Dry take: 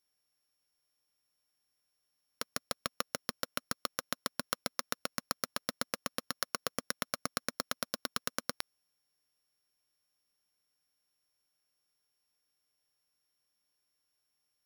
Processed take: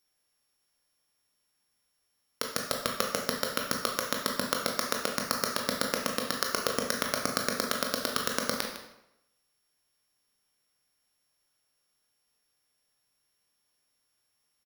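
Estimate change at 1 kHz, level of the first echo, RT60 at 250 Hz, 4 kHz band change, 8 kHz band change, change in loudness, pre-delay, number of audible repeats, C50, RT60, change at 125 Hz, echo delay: +7.5 dB, -13.0 dB, 0.85 s, +7.0 dB, +7.0 dB, +7.5 dB, 16 ms, 1, 4.0 dB, 0.85 s, +8.0 dB, 155 ms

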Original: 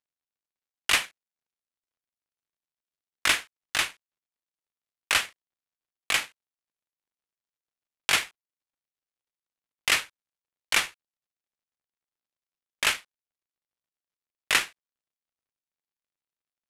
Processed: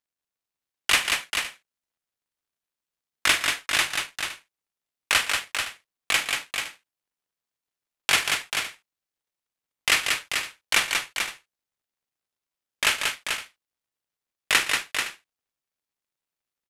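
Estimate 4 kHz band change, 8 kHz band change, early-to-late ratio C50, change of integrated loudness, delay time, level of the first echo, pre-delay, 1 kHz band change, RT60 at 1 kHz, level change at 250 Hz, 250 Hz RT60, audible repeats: +4.5 dB, +4.0 dB, no reverb, +1.5 dB, 46 ms, -14.0 dB, no reverb, +4.0 dB, no reverb, +4.0 dB, no reverb, 5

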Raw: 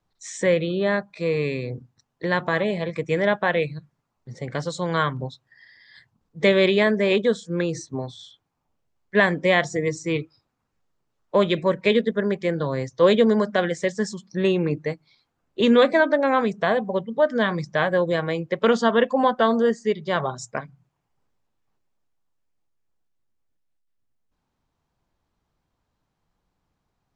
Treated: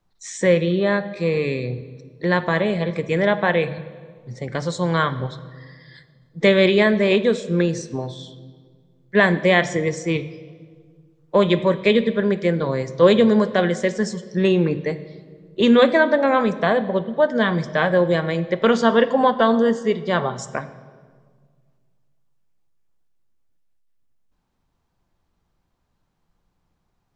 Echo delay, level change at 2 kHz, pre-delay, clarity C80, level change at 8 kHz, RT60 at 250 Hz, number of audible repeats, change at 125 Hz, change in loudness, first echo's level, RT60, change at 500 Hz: no echo, +2.5 dB, 5 ms, 15.5 dB, +2.0 dB, 2.2 s, no echo, +4.5 dB, +3.0 dB, no echo, 1.7 s, +2.5 dB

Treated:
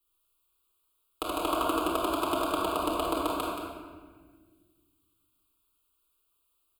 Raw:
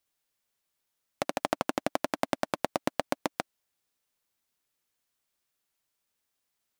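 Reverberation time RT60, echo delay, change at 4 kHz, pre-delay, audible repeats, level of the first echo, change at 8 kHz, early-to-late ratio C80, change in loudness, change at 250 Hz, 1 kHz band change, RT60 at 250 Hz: 1.5 s, 177 ms, +4.0 dB, 6 ms, 1, -7.5 dB, +2.0 dB, 0.0 dB, +3.0 dB, +3.5 dB, +4.5 dB, 2.5 s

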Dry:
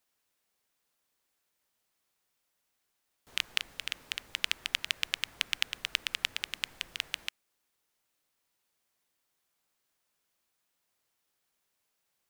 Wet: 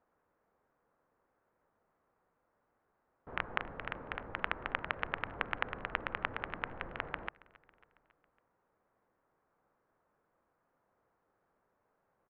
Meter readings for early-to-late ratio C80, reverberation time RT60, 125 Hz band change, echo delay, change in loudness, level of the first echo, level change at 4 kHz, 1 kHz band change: no reverb, no reverb, +11.0 dB, 275 ms, -5.5 dB, -22.5 dB, -17.5 dB, +10.0 dB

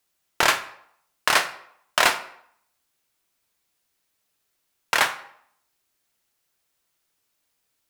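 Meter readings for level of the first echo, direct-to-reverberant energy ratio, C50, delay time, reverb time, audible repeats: no echo, 8.5 dB, 13.0 dB, no echo, 0.70 s, no echo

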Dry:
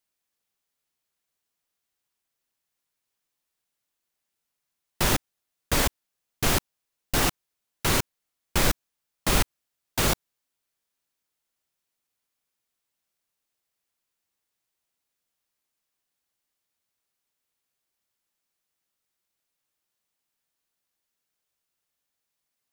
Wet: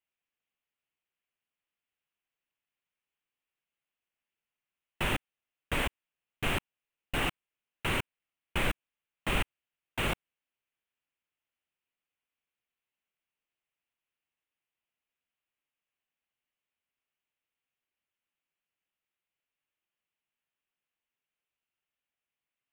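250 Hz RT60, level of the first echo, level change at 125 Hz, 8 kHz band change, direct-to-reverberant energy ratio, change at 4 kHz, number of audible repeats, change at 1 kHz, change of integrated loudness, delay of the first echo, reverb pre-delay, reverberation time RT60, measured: no reverb, no echo, -7.5 dB, -17.0 dB, no reverb, -7.5 dB, no echo, -6.5 dB, -8.0 dB, no echo, no reverb, no reverb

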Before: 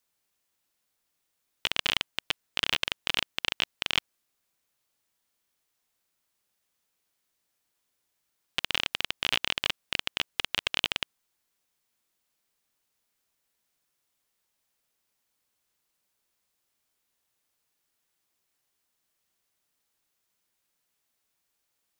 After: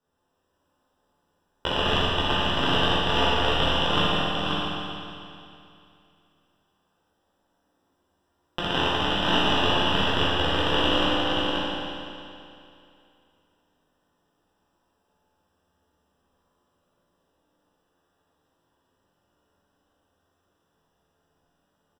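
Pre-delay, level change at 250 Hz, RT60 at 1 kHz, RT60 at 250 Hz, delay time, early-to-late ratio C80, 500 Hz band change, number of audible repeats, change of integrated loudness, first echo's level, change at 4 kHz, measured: 12 ms, +20.5 dB, 2.6 s, 2.6 s, 531 ms, -4.0 dB, +18.5 dB, 1, +6.0 dB, -3.5 dB, +5.5 dB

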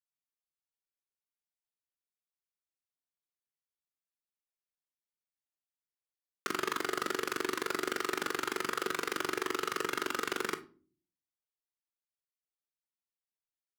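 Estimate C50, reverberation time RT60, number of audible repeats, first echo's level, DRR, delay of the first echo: 16.0 dB, 0.40 s, no echo, no echo, 10.0 dB, no echo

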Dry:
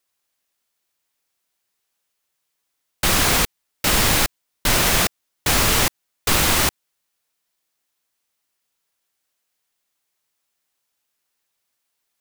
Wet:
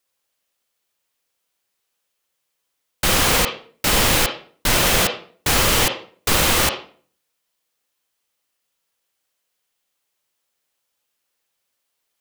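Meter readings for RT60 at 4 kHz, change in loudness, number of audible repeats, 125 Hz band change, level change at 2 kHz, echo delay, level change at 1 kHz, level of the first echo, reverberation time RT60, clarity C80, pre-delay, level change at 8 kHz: 0.35 s, +0.5 dB, no echo, 0.0 dB, +1.0 dB, no echo, +1.0 dB, no echo, 0.45 s, 12.5 dB, 35 ms, 0.0 dB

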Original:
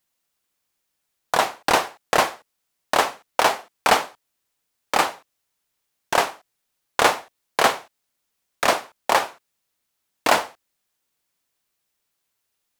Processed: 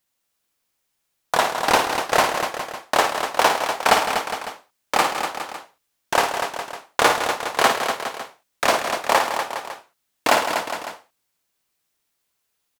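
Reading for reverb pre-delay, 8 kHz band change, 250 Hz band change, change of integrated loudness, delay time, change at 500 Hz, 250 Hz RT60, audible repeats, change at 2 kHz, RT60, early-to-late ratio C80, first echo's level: no reverb, +2.0 dB, +2.0 dB, +0.5 dB, 55 ms, +2.0 dB, no reverb, 5, +2.0 dB, no reverb, no reverb, -7.0 dB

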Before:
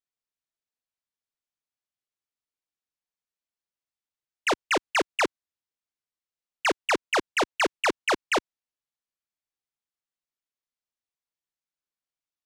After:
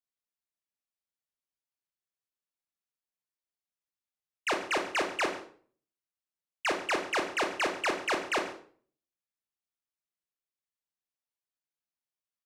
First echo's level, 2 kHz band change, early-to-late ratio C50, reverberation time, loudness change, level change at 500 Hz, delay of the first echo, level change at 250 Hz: -16.5 dB, -4.5 dB, 7.5 dB, 0.50 s, -5.0 dB, -4.5 dB, 140 ms, -4.5 dB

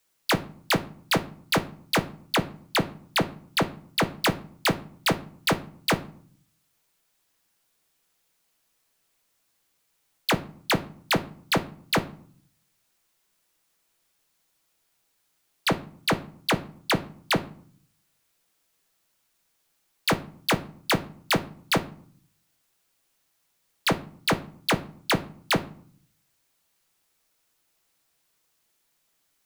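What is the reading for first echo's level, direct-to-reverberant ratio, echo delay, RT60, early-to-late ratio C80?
no echo, 9.0 dB, no echo, 0.55 s, 21.5 dB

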